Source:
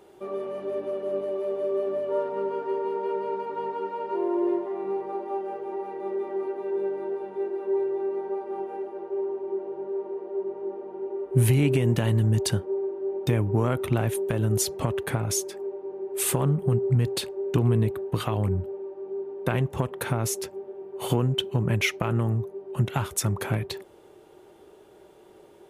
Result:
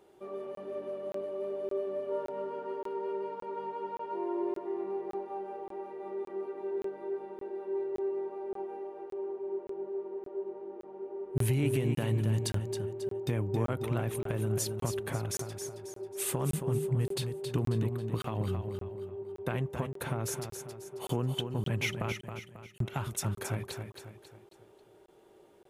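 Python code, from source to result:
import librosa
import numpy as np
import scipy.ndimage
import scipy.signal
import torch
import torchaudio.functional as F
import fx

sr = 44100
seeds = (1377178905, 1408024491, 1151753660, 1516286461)

y = fx.ellip_highpass(x, sr, hz=1900.0, order=4, stop_db=40, at=(22.12, 22.8))
y = fx.echo_feedback(y, sr, ms=271, feedback_pct=41, wet_db=-7.5)
y = fx.buffer_crackle(y, sr, first_s=0.55, period_s=0.57, block=1024, kind='zero')
y = y * librosa.db_to_amplitude(-8.0)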